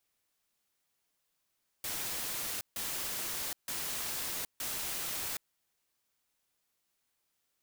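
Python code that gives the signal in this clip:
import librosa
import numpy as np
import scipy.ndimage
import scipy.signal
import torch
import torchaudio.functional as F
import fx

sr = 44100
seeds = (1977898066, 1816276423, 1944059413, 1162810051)

y = fx.noise_burst(sr, seeds[0], colour='white', on_s=0.77, off_s=0.15, bursts=4, level_db=-37.0)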